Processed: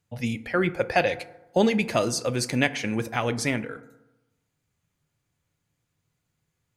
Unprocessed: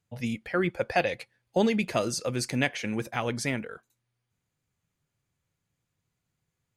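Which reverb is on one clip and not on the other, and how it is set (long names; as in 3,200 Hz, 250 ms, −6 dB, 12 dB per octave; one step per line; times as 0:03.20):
feedback delay network reverb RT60 0.98 s, low-frequency decay 1×, high-frequency decay 0.4×, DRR 13 dB
level +3.5 dB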